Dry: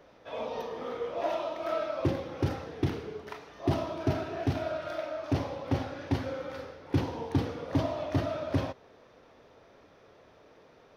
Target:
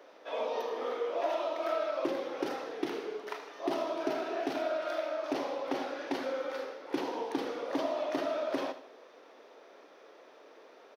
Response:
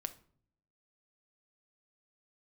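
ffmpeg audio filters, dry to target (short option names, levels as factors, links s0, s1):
-filter_complex "[0:a]highpass=f=300:w=0.5412,highpass=f=300:w=1.3066,acompressor=threshold=0.0224:ratio=2,asplit=2[s0][s1];[s1]aecho=0:1:78|156|234|312:0.224|0.0851|0.0323|0.0123[s2];[s0][s2]amix=inputs=2:normalize=0,volume=1.33"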